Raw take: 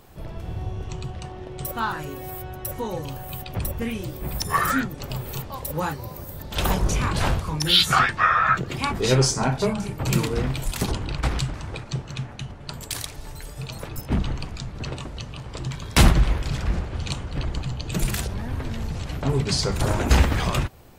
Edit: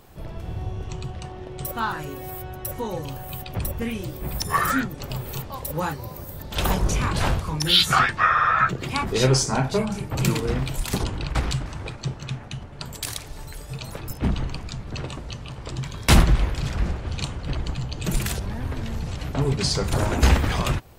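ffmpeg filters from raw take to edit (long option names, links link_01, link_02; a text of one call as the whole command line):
ffmpeg -i in.wav -filter_complex "[0:a]asplit=3[link_01][link_02][link_03];[link_01]atrim=end=8.382[link_04];[link_02]atrim=start=8.318:end=8.382[link_05];[link_03]atrim=start=8.318[link_06];[link_04][link_05]acrossfade=duration=0.004:curve1=hsin:curve2=hsin[link_07];[link_07][link_06]acrossfade=duration=0.004:curve1=hsin:curve2=hsin" out.wav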